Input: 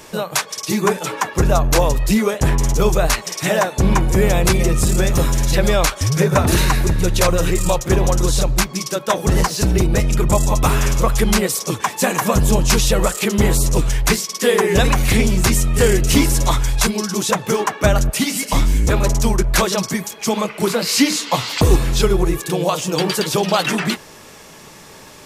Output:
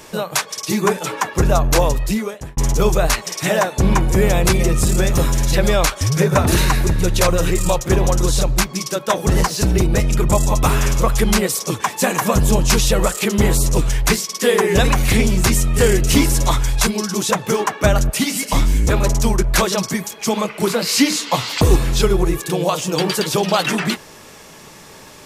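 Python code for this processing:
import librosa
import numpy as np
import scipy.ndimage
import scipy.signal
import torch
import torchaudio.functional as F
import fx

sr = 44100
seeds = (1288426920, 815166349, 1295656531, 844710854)

y = fx.edit(x, sr, fx.fade_out_span(start_s=1.87, length_s=0.7), tone=tone)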